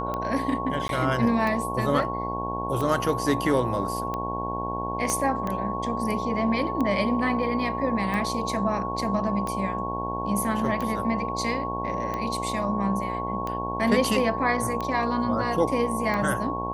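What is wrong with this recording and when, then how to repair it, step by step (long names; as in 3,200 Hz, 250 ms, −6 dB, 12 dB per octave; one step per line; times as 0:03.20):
mains buzz 60 Hz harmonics 18 −32 dBFS
scratch tick 45 rpm −17 dBFS
whistle 1,100 Hz −30 dBFS
0:00.88–0:00.89: drop-out 12 ms
0:05.10: click −13 dBFS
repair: click removal
hum removal 60 Hz, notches 18
notch filter 1,100 Hz, Q 30
repair the gap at 0:00.88, 12 ms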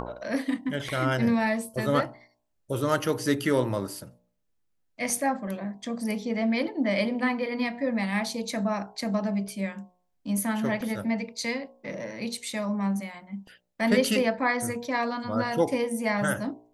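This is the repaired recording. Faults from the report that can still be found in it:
0:05.10: click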